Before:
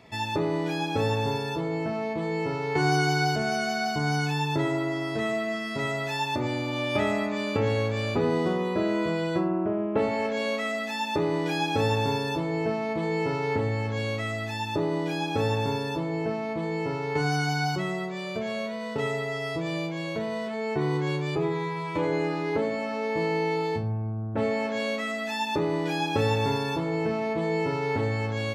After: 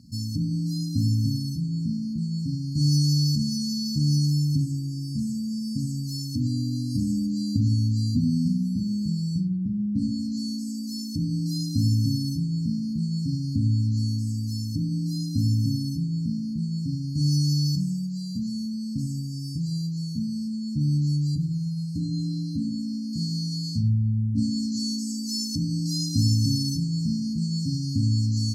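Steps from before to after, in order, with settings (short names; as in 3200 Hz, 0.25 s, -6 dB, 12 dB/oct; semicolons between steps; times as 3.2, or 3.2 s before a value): bell 6300 Hz -2.5 dB 1.4 oct, from 23.13 s +6.5 dB; brick-wall FIR band-stop 290–4100 Hz; gain +7.5 dB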